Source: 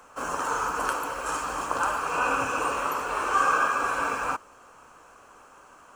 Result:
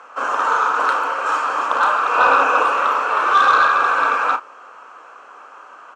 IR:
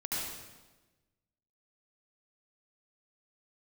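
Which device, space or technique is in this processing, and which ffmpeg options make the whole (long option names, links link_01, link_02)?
intercom: -filter_complex "[0:a]highpass=440,lowpass=3700,equalizer=frequency=1300:width_type=o:width=0.42:gain=4.5,asoftclip=type=tanh:threshold=-16dB,asplit=2[link_01][link_02];[link_02]adelay=33,volume=-10dB[link_03];[link_01][link_03]amix=inputs=2:normalize=0,asettb=1/sr,asplit=3[link_04][link_05][link_06];[link_04]atrim=end=2.194[link_07];[link_05]atrim=start=2.19:end=2.63,asetpts=PTS-STARTPTS,afade=type=in:duration=0.004:curve=qsin,afade=type=out:start_time=0.436:duration=0.004:curve=qsin,equalizer=frequency=610:width_type=o:width=1.7:gain=5[link_08];[link_06]atrim=start=2.626[link_09];[link_07][link_08]acrossfade=duration=0.004:curve1=hsin:curve2=qsin[link_10];[link_10][link_09]acrossfade=duration=0.004:curve1=qsin:curve2=hsin,volume=9dB"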